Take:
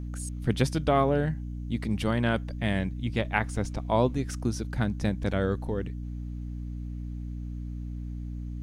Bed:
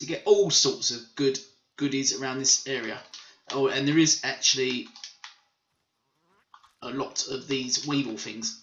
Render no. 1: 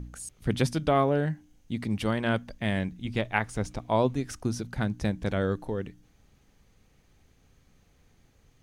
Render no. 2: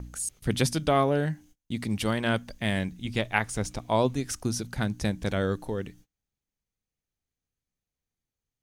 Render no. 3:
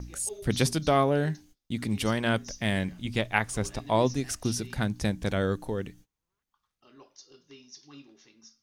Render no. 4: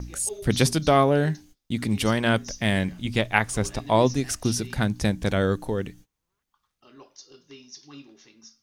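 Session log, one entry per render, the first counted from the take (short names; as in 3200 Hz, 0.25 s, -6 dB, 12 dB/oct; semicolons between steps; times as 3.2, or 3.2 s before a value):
de-hum 60 Hz, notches 5
gate -51 dBFS, range -29 dB; high shelf 3900 Hz +10 dB
add bed -22.5 dB
gain +4.5 dB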